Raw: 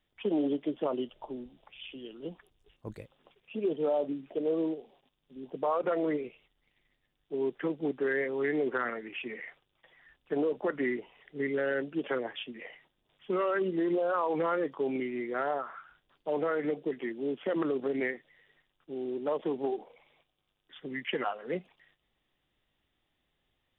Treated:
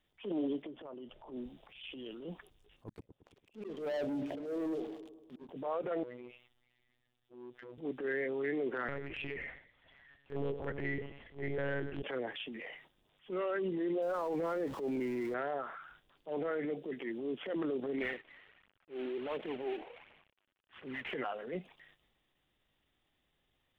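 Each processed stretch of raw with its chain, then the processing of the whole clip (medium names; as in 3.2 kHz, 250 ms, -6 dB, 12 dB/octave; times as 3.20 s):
0.62–1.32 s: low-pass 2.1 kHz 6 dB/octave + compression 12:1, threshold -42 dBFS
2.88–5.49 s: slow attack 776 ms + waveshaping leveller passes 3 + feedback echo behind a low-pass 112 ms, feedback 54%, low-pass 560 Hz, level -11 dB
6.03–7.78 s: compression 4:1, threshold -43 dBFS + robot voice 123 Hz + transformer saturation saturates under 680 Hz
8.88–12.03 s: feedback delay 109 ms, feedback 28%, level -16 dB + monotone LPC vocoder at 8 kHz 140 Hz
14.02–15.34 s: jump at every zero crossing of -39 dBFS + treble shelf 2 kHz -9.5 dB
17.98–21.14 s: CVSD coder 16 kbps + tilt EQ +1.5 dB/octave + phaser 1.4 Hz, delay 3.6 ms, feedback 41%
whole clip: dynamic bell 1.1 kHz, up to -6 dB, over -47 dBFS, Q 1.7; compression 2:1, threshold -34 dBFS; transient shaper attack -10 dB, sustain +4 dB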